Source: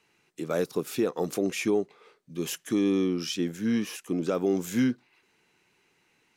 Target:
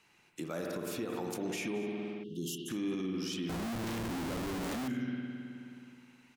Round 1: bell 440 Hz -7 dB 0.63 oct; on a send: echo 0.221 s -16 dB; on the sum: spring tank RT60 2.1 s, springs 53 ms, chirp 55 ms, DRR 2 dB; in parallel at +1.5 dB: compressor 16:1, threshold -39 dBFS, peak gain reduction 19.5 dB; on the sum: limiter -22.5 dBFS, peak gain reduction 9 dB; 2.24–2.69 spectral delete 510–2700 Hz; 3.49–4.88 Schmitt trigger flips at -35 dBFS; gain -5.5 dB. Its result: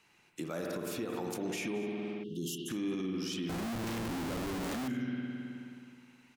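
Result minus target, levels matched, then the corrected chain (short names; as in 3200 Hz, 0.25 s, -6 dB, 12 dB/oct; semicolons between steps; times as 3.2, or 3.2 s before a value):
compressor: peak gain reduction -6 dB
bell 440 Hz -7 dB 0.63 oct; on a send: echo 0.221 s -16 dB; on the sum: spring tank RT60 2.1 s, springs 53 ms, chirp 55 ms, DRR 2 dB; in parallel at +1.5 dB: compressor 16:1, threshold -45.5 dBFS, peak gain reduction 25.5 dB; on the sum: limiter -22.5 dBFS, peak gain reduction 8 dB; 2.24–2.69 spectral delete 510–2700 Hz; 3.49–4.88 Schmitt trigger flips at -35 dBFS; gain -5.5 dB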